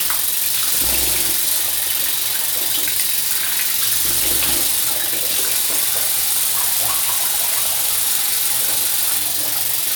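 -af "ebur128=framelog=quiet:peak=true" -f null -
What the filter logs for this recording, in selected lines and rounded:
Integrated loudness:
  I:         -14.9 LUFS
  Threshold: -24.9 LUFS
Loudness range:
  LRA:         0.5 LU
  Threshold: -34.9 LUFS
  LRA low:   -15.1 LUFS
  LRA high:  -14.6 LUFS
True peak:
  Peak:       -0.2 dBFS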